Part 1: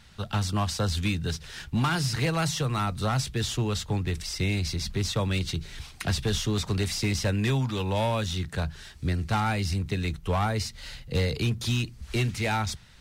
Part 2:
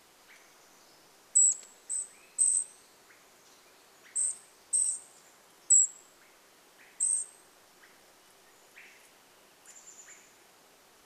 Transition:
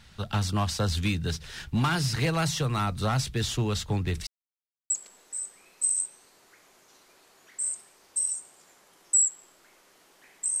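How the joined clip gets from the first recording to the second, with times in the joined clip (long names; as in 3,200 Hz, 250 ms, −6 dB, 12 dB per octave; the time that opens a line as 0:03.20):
part 1
0:04.27–0:04.90: silence
0:04.90: continue with part 2 from 0:01.47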